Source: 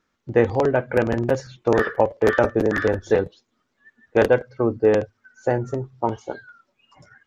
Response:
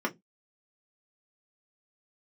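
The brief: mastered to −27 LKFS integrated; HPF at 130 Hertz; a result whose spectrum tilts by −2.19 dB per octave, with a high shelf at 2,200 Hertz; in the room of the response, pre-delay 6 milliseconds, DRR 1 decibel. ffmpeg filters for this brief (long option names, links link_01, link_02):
-filter_complex "[0:a]highpass=130,highshelf=frequency=2200:gain=6,asplit=2[link_01][link_02];[1:a]atrim=start_sample=2205,adelay=6[link_03];[link_02][link_03]afir=irnorm=-1:irlink=0,volume=-9.5dB[link_04];[link_01][link_04]amix=inputs=2:normalize=0,volume=-10dB"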